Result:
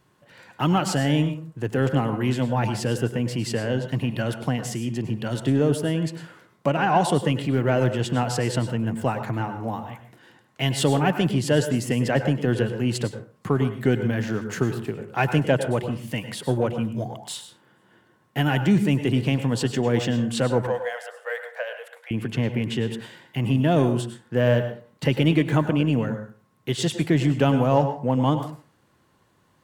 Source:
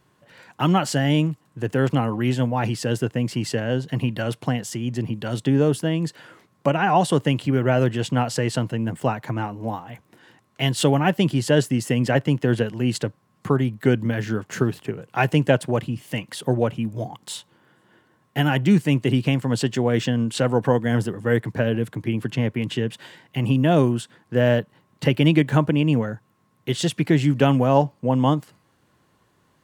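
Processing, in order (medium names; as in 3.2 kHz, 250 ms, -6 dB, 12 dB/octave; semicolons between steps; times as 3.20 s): in parallel at -9 dB: saturation -20.5 dBFS, distortion -8 dB; 20.67–22.11 s: on the sum: rippled Chebyshev high-pass 480 Hz, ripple 6 dB; reverberation RT60 0.40 s, pre-delay 93 ms, DRR 8.5 dB; trim -3.5 dB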